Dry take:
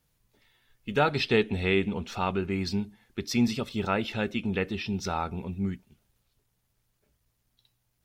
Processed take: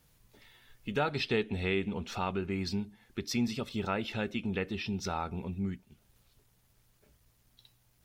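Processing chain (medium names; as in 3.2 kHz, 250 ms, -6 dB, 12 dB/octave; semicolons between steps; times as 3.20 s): compression 1.5:1, threshold -57 dBFS, peak gain reduction 13.5 dB; trim +6.5 dB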